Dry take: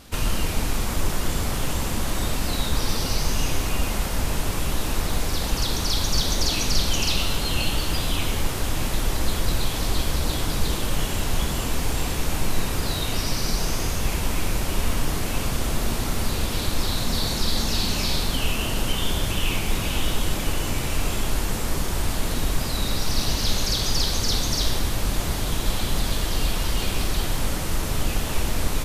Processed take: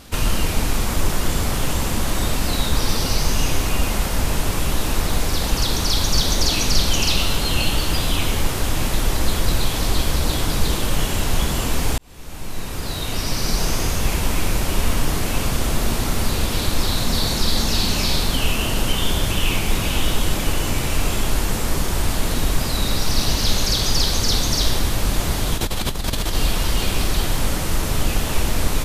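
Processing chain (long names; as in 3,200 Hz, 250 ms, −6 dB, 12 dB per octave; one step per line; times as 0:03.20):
0:11.98–0:13.63: fade in
0:25.56–0:26.35: compressor whose output falls as the input rises −26 dBFS, ratio −1
level +4 dB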